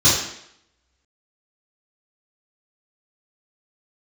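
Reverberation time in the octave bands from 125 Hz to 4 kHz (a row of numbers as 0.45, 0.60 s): 0.55, 0.70, 0.75, 0.75, 0.75, 0.70 s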